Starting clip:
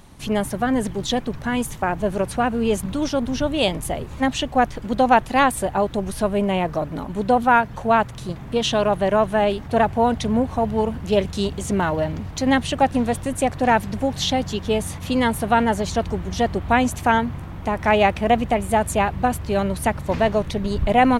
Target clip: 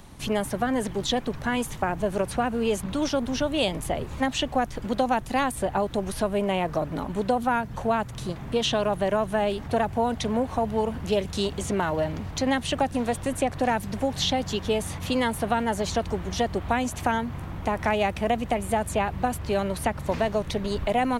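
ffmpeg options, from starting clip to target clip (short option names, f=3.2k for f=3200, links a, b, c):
-filter_complex "[0:a]acrossover=split=340|5200[a][b][c];[a]acompressor=threshold=-30dB:ratio=4[d];[b]acompressor=threshold=-23dB:ratio=4[e];[c]acompressor=threshold=-37dB:ratio=4[f];[d][e][f]amix=inputs=3:normalize=0"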